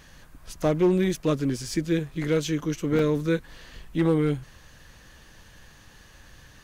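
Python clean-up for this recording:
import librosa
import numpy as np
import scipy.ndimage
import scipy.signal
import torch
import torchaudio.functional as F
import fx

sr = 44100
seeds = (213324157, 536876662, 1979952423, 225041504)

y = fx.fix_declip(x, sr, threshold_db=-15.0)
y = fx.fix_interpolate(y, sr, at_s=(1.69, 2.6, 2.99), length_ms=2.0)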